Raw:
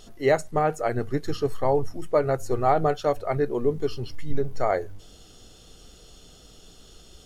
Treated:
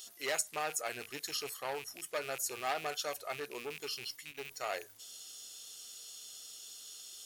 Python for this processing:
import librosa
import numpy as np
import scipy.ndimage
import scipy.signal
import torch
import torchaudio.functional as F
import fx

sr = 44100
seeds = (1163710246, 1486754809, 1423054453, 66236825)

y = fx.rattle_buzz(x, sr, strikes_db=-36.0, level_db=-31.0)
y = 10.0 ** (-17.0 / 20.0) * np.tanh(y / 10.0 ** (-17.0 / 20.0))
y = np.diff(y, prepend=0.0)
y = y * 10.0 ** (7.5 / 20.0)